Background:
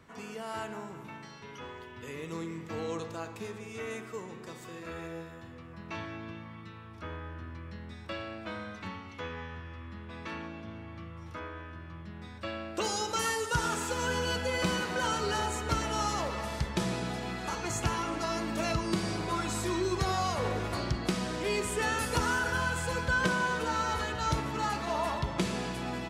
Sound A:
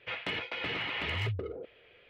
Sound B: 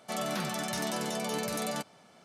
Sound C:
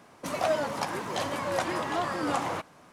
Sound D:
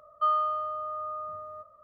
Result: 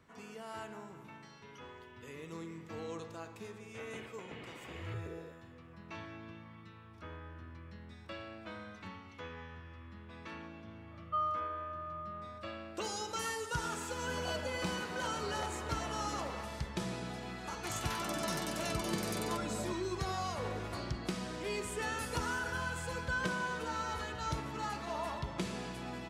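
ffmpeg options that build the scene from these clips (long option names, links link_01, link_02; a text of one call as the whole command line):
ffmpeg -i bed.wav -i cue0.wav -i cue1.wav -i cue2.wav -i cue3.wav -filter_complex "[0:a]volume=-7dB[link_01];[1:a]tiltshelf=frequency=1100:gain=6[link_02];[2:a]acrossover=split=820[link_03][link_04];[link_03]adelay=360[link_05];[link_05][link_04]amix=inputs=2:normalize=0[link_06];[link_02]atrim=end=2.09,asetpts=PTS-STARTPTS,volume=-14.5dB,afade=type=in:duration=0.004:curve=hsin,afade=type=out:start_time=2.086:duration=0.004:curve=hsin,adelay=3670[link_07];[4:a]atrim=end=1.83,asetpts=PTS-STARTPTS,volume=-8.5dB,afade=type=in:duration=0.004:curve=hsin,afade=type=out:start_time=1.826:duration=0.004:curve=hsin,adelay=10910[link_08];[3:a]atrim=end=2.92,asetpts=PTS-STARTPTS,volume=-16.5dB,afade=type=in:duration=0.004:curve=hsin,afade=type=out:start_time=2.916:duration=0.004:curve=hsin,adelay=13840[link_09];[link_06]atrim=end=2.24,asetpts=PTS-STARTPTS,volume=-5dB,afade=type=in:duration=0.004:curve=hsin,afade=type=out:start_time=2.236:duration=0.004:curve=hsin,adelay=17550[link_10];[link_01][link_07][link_08][link_09][link_10]amix=inputs=5:normalize=0" out.wav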